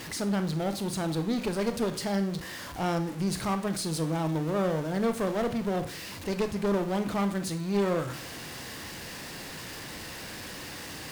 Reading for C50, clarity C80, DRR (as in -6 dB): 12.0 dB, 17.0 dB, 8.5 dB